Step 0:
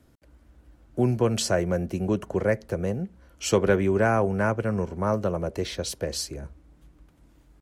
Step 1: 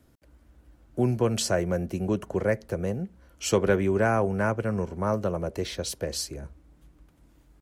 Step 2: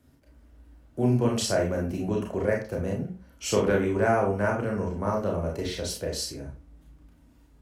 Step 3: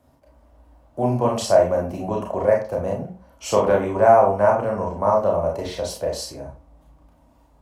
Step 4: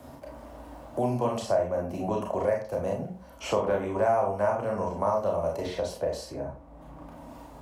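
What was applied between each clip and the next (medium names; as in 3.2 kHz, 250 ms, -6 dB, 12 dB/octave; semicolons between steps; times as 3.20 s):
treble shelf 11 kHz +4.5 dB; trim -1.5 dB
reverberation RT60 0.35 s, pre-delay 28 ms, DRR -1.5 dB; trim -3.5 dB
high-order bell 780 Hz +12 dB 1.3 oct
three bands compressed up and down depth 70%; trim -7.5 dB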